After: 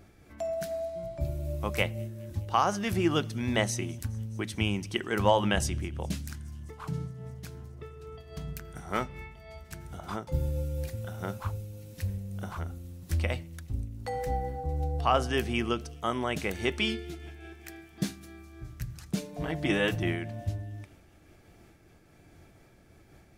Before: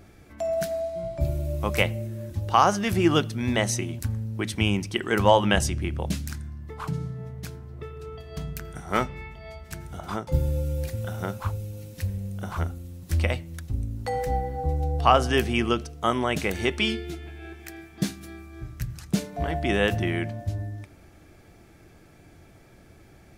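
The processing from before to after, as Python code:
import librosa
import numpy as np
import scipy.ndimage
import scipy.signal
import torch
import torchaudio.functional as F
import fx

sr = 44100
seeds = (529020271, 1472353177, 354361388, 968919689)

p1 = fx.comb(x, sr, ms=6.5, depth=0.73, at=(19.16, 20.03))
p2 = p1 + fx.echo_wet_highpass(p1, sr, ms=208, feedback_pct=78, hz=4700.0, wet_db=-22.0, dry=0)
p3 = fx.am_noise(p2, sr, seeds[0], hz=5.7, depth_pct=55)
y = p3 * librosa.db_to_amplitude(-2.0)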